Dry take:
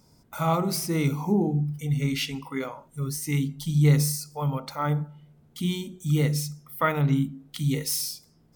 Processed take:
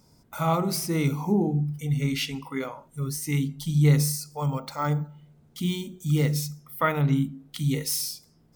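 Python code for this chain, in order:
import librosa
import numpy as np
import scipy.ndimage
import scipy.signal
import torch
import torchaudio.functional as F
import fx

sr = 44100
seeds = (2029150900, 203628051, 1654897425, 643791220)

y = fx.resample_bad(x, sr, factor=2, down='none', up='hold', at=(4.38, 6.6))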